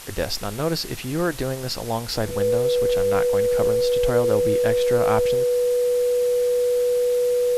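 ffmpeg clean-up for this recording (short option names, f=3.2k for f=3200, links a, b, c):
-af "bandreject=f=490:w=30,afwtdn=0.013"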